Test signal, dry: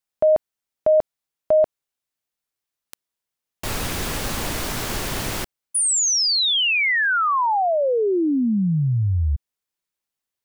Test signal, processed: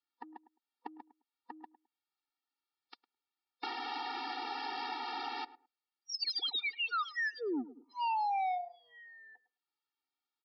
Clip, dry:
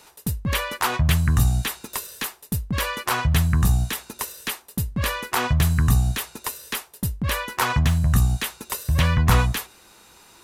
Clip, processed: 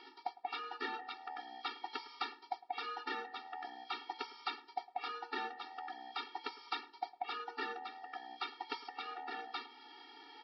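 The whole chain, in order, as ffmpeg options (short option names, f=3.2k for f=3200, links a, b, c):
-filter_complex "[0:a]afftfilt=real='real(if(lt(b,1008),b+24*(1-2*mod(floor(b/24),2)),b),0)':imag='imag(if(lt(b,1008),b+24*(1-2*mod(floor(b/24),2)),b),0)':win_size=2048:overlap=0.75,alimiter=limit=-16dB:level=0:latency=1:release=377,equalizer=f=125:t=o:w=1:g=-9,equalizer=f=500:t=o:w=1:g=-11,equalizer=f=1k:t=o:w=1:g=4,equalizer=f=2k:t=o:w=1:g=-4,equalizer=f=4k:t=o:w=1:g=-3,aresample=11025,asoftclip=type=tanh:threshold=-25dB,aresample=44100,asplit=2[a][b];[b]adelay=106,lowpass=f=1.1k:p=1,volume=-16dB,asplit=2[c][d];[d]adelay=106,lowpass=f=1.1k:p=1,volume=0.15[e];[a][c][e]amix=inputs=3:normalize=0,acompressor=threshold=-42dB:ratio=2:attack=96:release=348:detection=rms,lowshelf=f=90:g=-11.5,afftfilt=real='re*eq(mod(floor(b*sr/1024/240),2),1)':imag='im*eq(mod(floor(b*sr/1024/240),2),1)':win_size=1024:overlap=0.75,volume=3dB"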